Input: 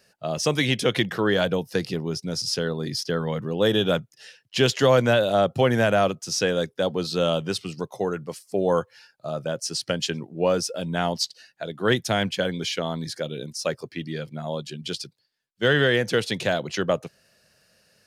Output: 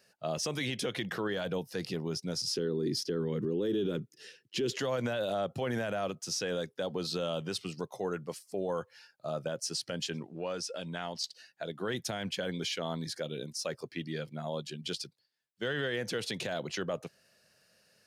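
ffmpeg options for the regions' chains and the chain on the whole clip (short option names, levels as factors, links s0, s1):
-filter_complex "[0:a]asettb=1/sr,asplit=3[s0][s1][s2];[s0]atrim=end=2.564[s3];[s1]atrim=start=2.56:end=4.78,asetpts=PTS-STARTPTS,afade=t=in:d=0.004:c=qsin,afade=t=out:st=2.216:d=0.004:c=qsin,highpass=f=210:p=1,lowshelf=f=500:t=q:w=3:g=10[s4];[s2]atrim=start=4.776[s5];[s3][s4]acrossfade=d=0.004:c1=hsin:c2=qsin[s6];[s6][s5]acrossfade=d=0.004:c1=qsin:c2=hsin,asettb=1/sr,asplit=3[s7][s8][s9];[s7]atrim=end=10.214[s10];[s8]atrim=start=10.21:end=11.24,asetpts=PTS-STARTPTS,afade=t=in:d=0.004:c=qsin,afade=t=out:st=1.026:d=0.004:c=qsin,lowpass=11000,equalizer=f=2600:w=0.38:g=6,acompressor=threshold=0.0251:ratio=2.5:attack=3.2:release=140:knee=1:detection=peak[s11];[s9]atrim=start=11.236[s12];[s10][s11]acrossfade=d=0.004:c1=hsin:c2=qsin[s13];[s13][s12]acrossfade=d=0.004:c1=qsin:c2=hsin,lowshelf=f=73:g=-10.5,alimiter=limit=0.112:level=0:latency=1:release=57,volume=0.562"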